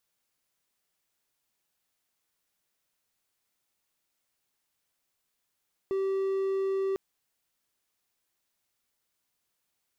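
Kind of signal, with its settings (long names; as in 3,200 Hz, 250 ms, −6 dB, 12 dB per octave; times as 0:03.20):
tone triangle 387 Hz −24 dBFS 1.05 s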